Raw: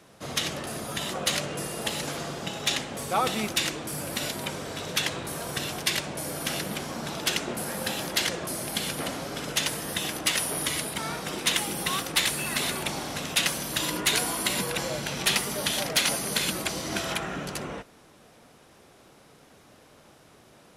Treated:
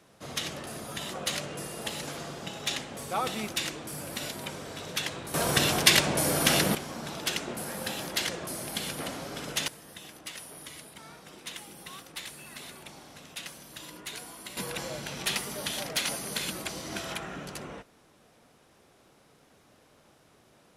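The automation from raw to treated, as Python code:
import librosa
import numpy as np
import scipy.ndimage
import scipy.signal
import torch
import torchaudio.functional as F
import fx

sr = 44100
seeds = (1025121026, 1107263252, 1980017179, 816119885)

y = fx.gain(x, sr, db=fx.steps((0.0, -5.0), (5.34, 7.0), (6.75, -4.0), (9.68, -16.0), (14.57, -6.0)))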